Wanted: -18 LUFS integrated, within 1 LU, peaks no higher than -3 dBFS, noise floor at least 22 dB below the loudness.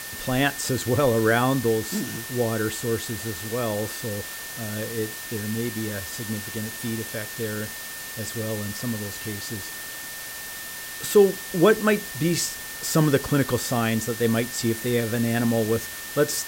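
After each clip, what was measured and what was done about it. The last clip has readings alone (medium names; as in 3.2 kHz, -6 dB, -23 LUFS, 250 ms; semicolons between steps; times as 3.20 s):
steady tone 1.8 kHz; tone level -39 dBFS; noise floor -36 dBFS; noise floor target -47 dBFS; loudness -25.0 LUFS; peak level -6.5 dBFS; loudness target -18.0 LUFS
-> band-stop 1.8 kHz, Q 30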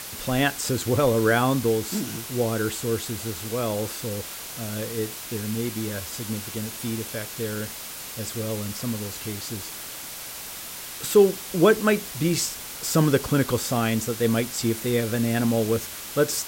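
steady tone not found; noise floor -37 dBFS; noise floor target -48 dBFS
-> noise reduction 11 dB, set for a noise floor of -37 dBFS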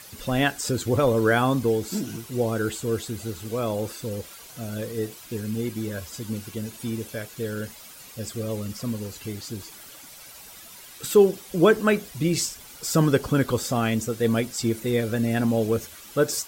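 noise floor -45 dBFS; noise floor target -48 dBFS
-> noise reduction 6 dB, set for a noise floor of -45 dBFS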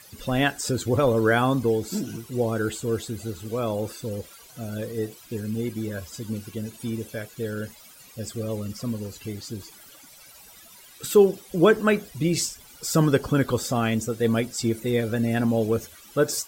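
noise floor -49 dBFS; loudness -25.5 LUFS; peak level -6.5 dBFS; loudness target -18.0 LUFS
-> trim +7.5 dB; peak limiter -3 dBFS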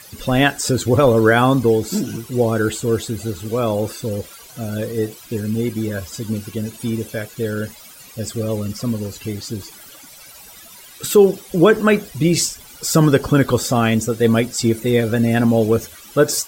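loudness -18.5 LUFS; peak level -3.0 dBFS; noise floor -42 dBFS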